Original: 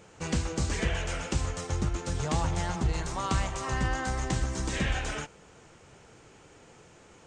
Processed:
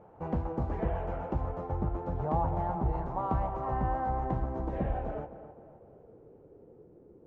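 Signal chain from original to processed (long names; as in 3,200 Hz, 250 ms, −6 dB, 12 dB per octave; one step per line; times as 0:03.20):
low-pass filter sweep 810 Hz → 390 Hz, 0:04.32–0:07.05
tape delay 258 ms, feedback 48%, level −11 dB, low-pass 1,800 Hz
level −3 dB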